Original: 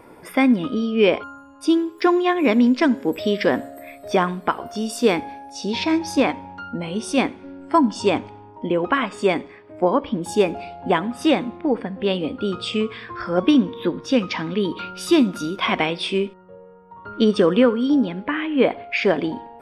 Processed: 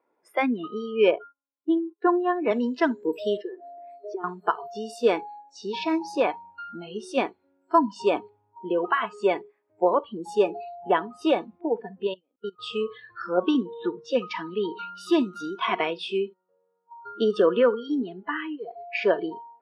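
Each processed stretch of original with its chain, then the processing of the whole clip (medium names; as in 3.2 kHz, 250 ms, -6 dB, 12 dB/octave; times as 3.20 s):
1.11–2.51 s: distance through air 390 m + gate -39 dBFS, range -18 dB + three bands expanded up and down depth 40%
3.37–4.24 s: compression 10:1, threshold -31 dBFS + resonant high-pass 340 Hz, resonance Q 3.9 + distance through air 77 m
12.07–12.59 s: expander -21 dBFS + bass shelf 180 Hz -3.5 dB + level held to a coarse grid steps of 24 dB
18.55–18.95 s: peaking EQ 2.4 kHz -4.5 dB 1.4 oct + compression 8:1, threshold -25 dBFS
whole clip: low-pass 1.5 kHz 6 dB/octave; spectral noise reduction 24 dB; high-pass 400 Hz 12 dB/octave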